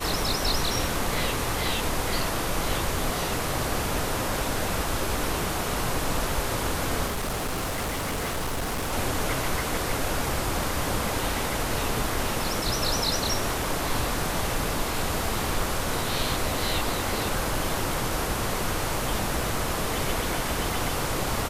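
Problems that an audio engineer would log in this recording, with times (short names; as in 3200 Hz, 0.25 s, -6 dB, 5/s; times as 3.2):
7.06–8.93 clipped -25.5 dBFS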